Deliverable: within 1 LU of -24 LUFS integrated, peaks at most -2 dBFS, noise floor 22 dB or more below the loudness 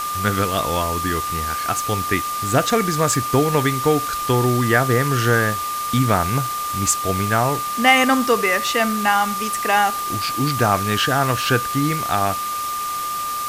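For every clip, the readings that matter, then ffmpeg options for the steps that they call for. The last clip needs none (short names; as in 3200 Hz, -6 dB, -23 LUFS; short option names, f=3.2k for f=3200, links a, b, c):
steady tone 1200 Hz; tone level -23 dBFS; noise floor -25 dBFS; noise floor target -41 dBFS; loudness -19.0 LUFS; peak -2.5 dBFS; loudness target -24.0 LUFS
-> -af "bandreject=f=1.2k:w=30"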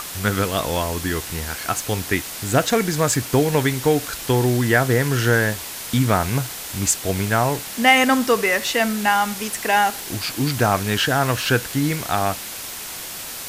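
steady tone none; noise floor -33 dBFS; noise floor target -43 dBFS
-> -af "afftdn=nr=10:nf=-33"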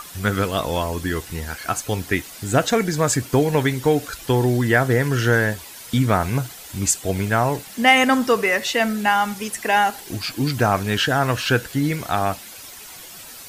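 noise floor -39 dBFS; noise floor target -43 dBFS
-> -af "afftdn=nr=6:nf=-39"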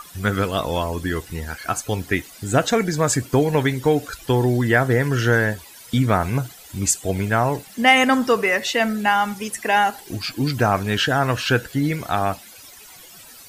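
noise floor -44 dBFS; loudness -20.5 LUFS; peak -3.5 dBFS; loudness target -24.0 LUFS
-> -af "volume=-3.5dB"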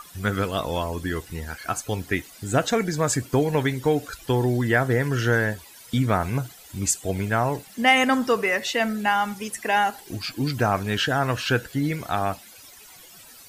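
loudness -24.0 LUFS; peak -7.0 dBFS; noise floor -47 dBFS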